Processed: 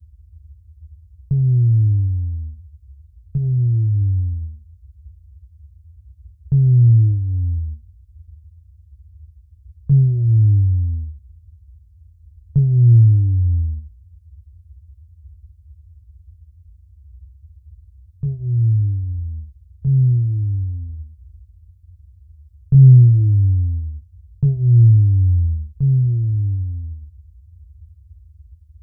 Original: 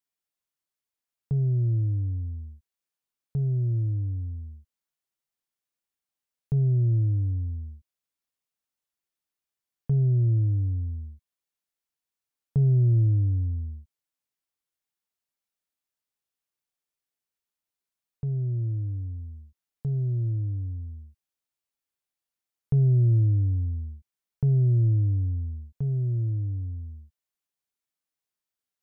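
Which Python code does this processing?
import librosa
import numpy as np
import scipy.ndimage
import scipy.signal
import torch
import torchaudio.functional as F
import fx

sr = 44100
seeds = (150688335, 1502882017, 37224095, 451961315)

y = fx.chorus_voices(x, sr, voices=4, hz=0.17, base_ms=23, depth_ms=3.8, mix_pct=30)
y = fx.dmg_noise_band(y, sr, seeds[0], low_hz=52.0, high_hz=90.0, level_db=-56.0)
y = fx.bass_treble(y, sr, bass_db=13, treble_db=6)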